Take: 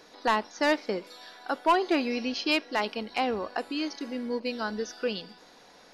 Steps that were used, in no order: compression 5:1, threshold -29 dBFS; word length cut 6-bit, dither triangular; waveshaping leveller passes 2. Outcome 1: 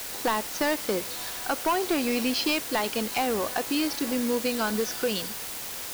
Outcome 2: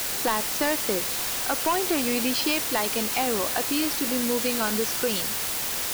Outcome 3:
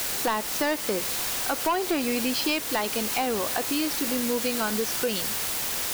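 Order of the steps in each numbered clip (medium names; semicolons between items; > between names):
compression > waveshaping leveller > word length cut; compression > word length cut > waveshaping leveller; word length cut > compression > waveshaping leveller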